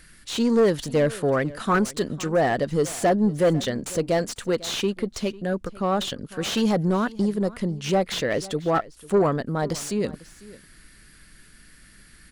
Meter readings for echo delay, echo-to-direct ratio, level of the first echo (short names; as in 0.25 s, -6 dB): 0.498 s, -20.0 dB, -20.0 dB